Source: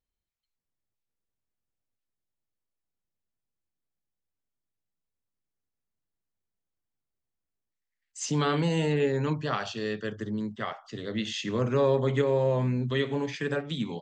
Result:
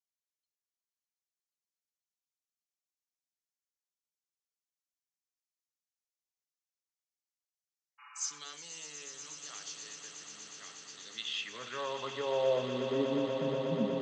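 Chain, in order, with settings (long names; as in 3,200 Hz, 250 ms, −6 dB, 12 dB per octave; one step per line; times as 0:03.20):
band-pass filter sweep 6,100 Hz → 200 Hz, 0:10.82–0:13.33
echo that builds up and dies away 121 ms, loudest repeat 8, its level −12 dB
healed spectral selection 0:08.02–0:08.36, 800–2,900 Hz after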